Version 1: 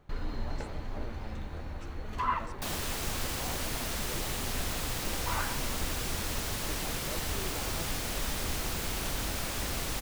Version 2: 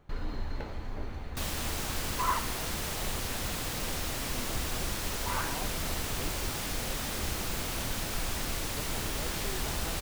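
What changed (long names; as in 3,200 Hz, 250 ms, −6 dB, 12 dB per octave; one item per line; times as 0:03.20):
speech: entry +2.10 s
second sound: entry −1.25 s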